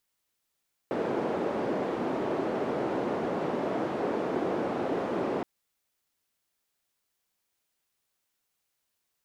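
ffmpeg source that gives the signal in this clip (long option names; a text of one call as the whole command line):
ffmpeg -f lavfi -i "anoisesrc=color=white:duration=4.52:sample_rate=44100:seed=1,highpass=frequency=310,lowpass=frequency=410,volume=-4dB" out.wav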